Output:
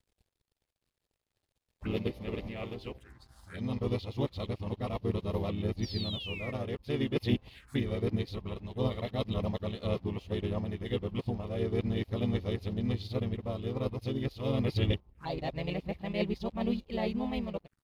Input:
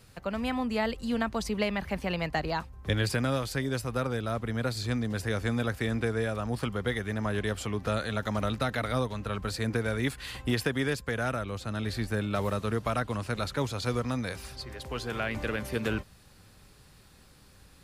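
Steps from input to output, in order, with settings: whole clip reversed; painted sound fall, 5.82–6.52, 2100–5900 Hz -34 dBFS; harmoniser -3 st -3 dB; envelope phaser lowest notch 170 Hz, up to 1500 Hz, full sweep at -29 dBFS; crossover distortion -52.5 dBFS; high shelf 4700 Hz -7.5 dB; notch 5900 Hz, Q 25; upward expander 1.5:1, over -45 dBFS

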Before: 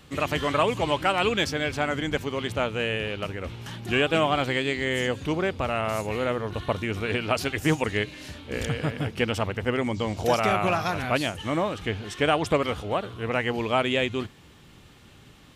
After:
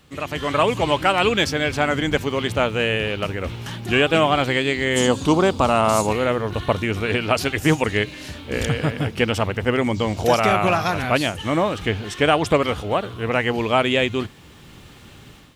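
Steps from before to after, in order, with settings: 4.96–6.13 graphic EQ 250/1000/2000/4000/8000 Hz +6/+9/-8/+6/+10 dB; requantised 12-bit, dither triangular; AGC gain up to 10 dB; gain -2.5 dB

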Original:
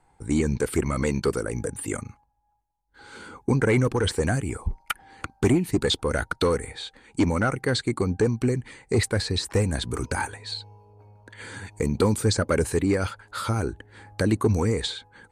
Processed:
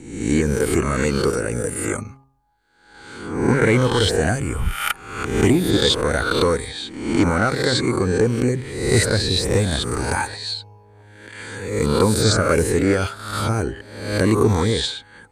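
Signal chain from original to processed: spectral swells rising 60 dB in 0.79 s; de-hum 134.2 Hz, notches 9; gain +3 dB

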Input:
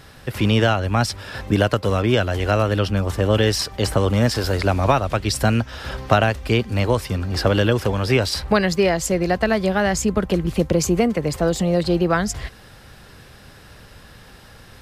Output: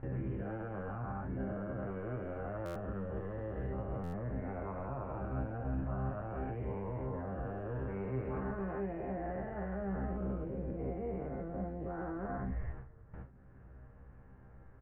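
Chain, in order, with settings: spectral dilation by 0.48 s; Bessel low-pass 1100 Hz, order 8; gate with hold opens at -29 dBFS; low shelf 190 Hz +7.5 dB; upward compressor, threshold -31 dBFS; limiter -21 dBFS, peak gain reduction 22 dB; metallic resonator 64 Hz, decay 0.21 s, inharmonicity 0.002; on a send: frequency-shifting echo 0.217 s, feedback 58%, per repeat -82 Hz, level -20 dB; on the sum: stuck buffer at 2.65/4.03, samples 512, times 8; gain -5.5 dB

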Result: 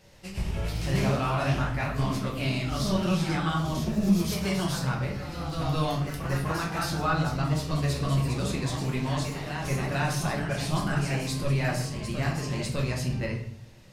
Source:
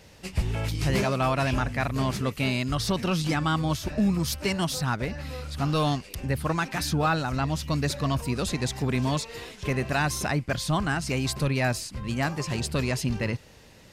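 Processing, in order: reverb RT60 0.60 s, pre-delay 5 ms, DRR -1.5 dB; echoes that change speed 0.112 s, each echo +1 st, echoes 3, each echo -6 dB; gain -7.5 dB

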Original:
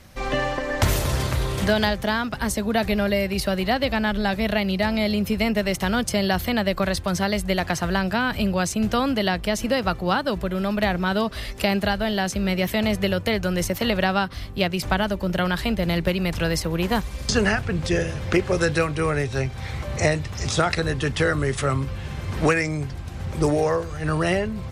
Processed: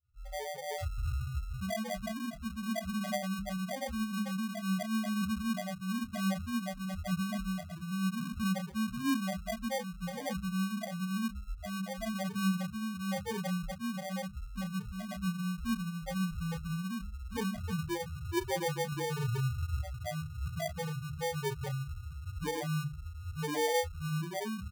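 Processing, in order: opening faded in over 0.56 s; limiter -15.5 dBFS, peak gain reduction 9 dB; tremolo 0.97 Hz, depth 37%; loudest bins only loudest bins 1; 18.92–19.79 tilt shelf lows +5.5 dB, about 860 Hz; doubler 26 ms -8.5 dB; sample-and-hold 33×; notches 50/100/150/200/250/300 Hz; 0.78–1.2 running maximum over 3 samples

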